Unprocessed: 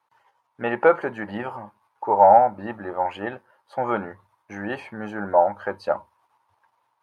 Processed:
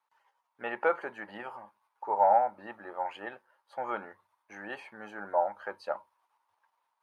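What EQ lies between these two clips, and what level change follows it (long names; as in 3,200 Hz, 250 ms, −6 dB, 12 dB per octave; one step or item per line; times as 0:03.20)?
high-pass filter 700 Hz 6 dB per octave
−7.0 dB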